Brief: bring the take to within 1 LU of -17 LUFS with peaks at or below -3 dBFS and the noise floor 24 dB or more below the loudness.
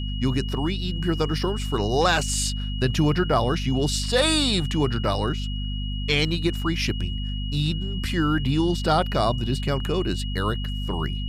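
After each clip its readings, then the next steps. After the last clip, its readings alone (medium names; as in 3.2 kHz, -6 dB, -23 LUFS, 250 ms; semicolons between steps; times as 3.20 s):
hum 50 Hz; highest harmonic 250 Hz; hum level -26 dBFS; steady tone 2.9 kHz; tone level -36 dBFS; loudness -24.0 LUFS; peak level -7.5 dBFS; loudness target -17.0 LUFS
-> hum notches 50/100/150/200/250 Hz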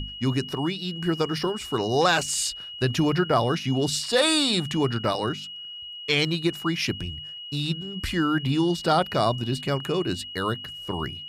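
hum not found; steady tone 2.9 kHz; tone level -36 dBFS
-> band-stop 2.9 kHz, Q 30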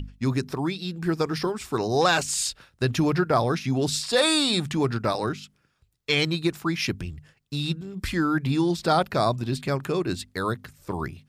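steady tone not found; loudness -25.5 LUFS; peak level -8.5 dBFS; loudness target -17.0 LUFS
-> trim +8.5 dB; peak limiter -3 dBFS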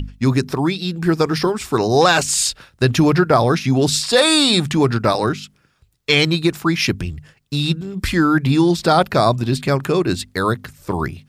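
loudness -17.0 LUFS; peak level -3.0 dBFS; noise floor -59 dBFS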